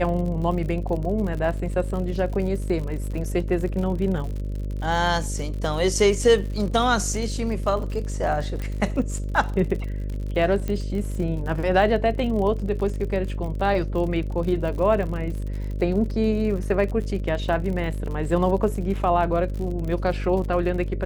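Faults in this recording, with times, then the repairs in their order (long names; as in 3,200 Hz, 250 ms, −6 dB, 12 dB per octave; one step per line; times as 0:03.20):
mains buzz 50 Hz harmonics 12 −28 dBFS
surface crackle 56 per second −31 dBFS
0:08.62: click −19 dBFS
0:10.68: click −16 dBFS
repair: click removal
hum removal 50 Hz, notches 12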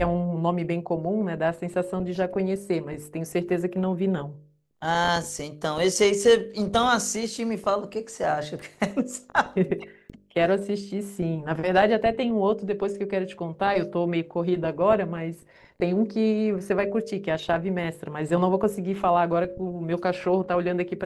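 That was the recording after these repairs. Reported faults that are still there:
none of them is left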